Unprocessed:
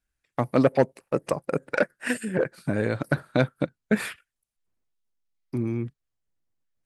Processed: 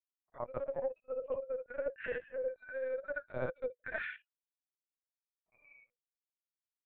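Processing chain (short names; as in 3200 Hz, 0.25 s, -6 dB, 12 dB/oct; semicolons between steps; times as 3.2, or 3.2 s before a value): short-time reversal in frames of 0.15 s; Chebyshev high-pass 480 Hz, order 10; spectral noise reduction 30 dB; LPF 1200 Hz 12 dB/oct; reverse; compressor 16:1, threshold -40 dBFS, peak gain reduction 19 dB; reverse; LPC vocoder at 8 kHz pitch kept; gain +7 dB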